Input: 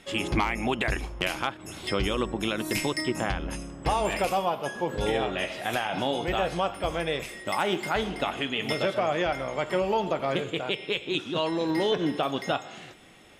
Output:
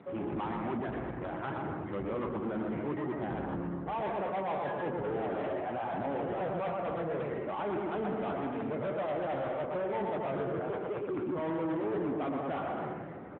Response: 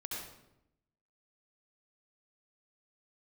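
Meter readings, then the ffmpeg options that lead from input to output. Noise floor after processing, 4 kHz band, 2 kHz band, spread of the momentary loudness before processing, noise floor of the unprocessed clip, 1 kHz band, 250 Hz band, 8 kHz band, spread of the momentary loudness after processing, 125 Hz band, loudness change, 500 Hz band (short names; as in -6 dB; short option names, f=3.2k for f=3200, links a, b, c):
-40 dBFS, -23.5 dB, -12.5 dB, 5 LU, -45 dBFS, -6.0 dB, -4.0 dB, under -40 dB, 4 LU, -5.5 dB, -6.5 dB, -5.0 dB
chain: -af "areverse,acompressor=threshold=-35dB:ratio=8,areverse,aeval=exprs='(mod(18.8*val(0)+1,2)-1)/18.8':c=same,lowpass=f=1.4k:w=0.5412,lowpass=f=1.4k:w=1.3066,aecho=1:1:120|204|262.8|304|332.8:0.631|0.398|0.251|0.158|0.1,aresample=8000,asoftclip=type=tanh:threshold=-38.5dB,aresample=44100,volume=9dB" -ar 8000 -c:a libopencore_amrnb -b:a 10200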